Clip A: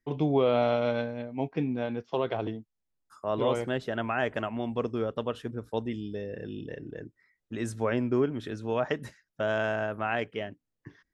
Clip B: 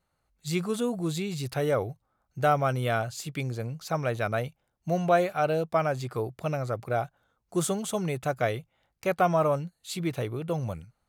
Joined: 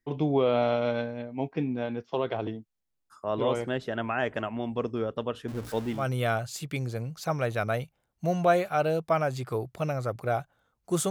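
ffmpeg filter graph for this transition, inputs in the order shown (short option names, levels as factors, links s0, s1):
-filter_complex "[0:a]asettb=1/sr,asplit=3[s0][s1][s2];[s0]atrim=end=5.484[s3];[s1]atrim=start=5.48:end=6.09,asetpts=PTS-STARTPTS,afade=t=in:d=0.004:c=qsin,afade=t=out:st=0.606:d=0.004:c=qsin,aeval=exprs='val(0)+0.5*0.0141*sgn(val(0))':c=same[s4];[s2]atrim=start=6.086[s5];[s3][s4]acrossfade=d=0.004:c1=hsin:c2=qsin[s6];[s6][s5]acrossfade=d=0.004:c1=qsin:c2=hsin,apad=whole_dur=11.1,atrim=end=11.1,atrim=end=6.09,asetpts=PTS-STARTPTS[s7];[1:a]atrim=start=2.55:end=7.74,asetpts=PTS-STARTPTS[s8];[s7][s8]acrossfade=d=0.18:c1=tri:c2=tri"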